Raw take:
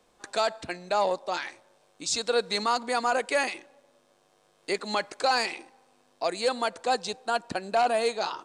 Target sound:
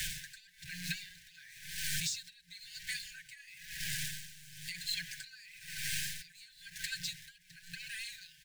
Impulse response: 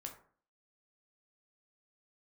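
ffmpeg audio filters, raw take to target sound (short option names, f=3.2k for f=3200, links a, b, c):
-filter_complex "[0:a]aeval=exprs='val(0)+0.5*0.0335*sgn(val(0))':c=same,acompressor=threshold=-34dB:ratio=6,afftfilt=real='re*(1-between(b*sr/4096,180,1500))':imag='im*(1-between(b*sr/4096,180,1500))':win_size=4096:overlap=0.75,asplit=2[a][b];[b]adelay=1104,lowpass=f=1.1k:p=1,volume=-23dB,asplit=2[c][d];[d]adelay=1104,lowpass=f=1.1k:p=1,volume=0.17[e];[c][e]amix=inputs=2:normalize=0[f];[a][f]amix=inputs=2:normalize=0,flanger=delay=4.4:depth=3.1:regen=9:speed=1.6:shape=triangular,aeval=exprs='val(0)*pow(10,-20*(0.5-0.5*cos(2*PI*1*n/s))/20)':c=same,volume=7.5dB"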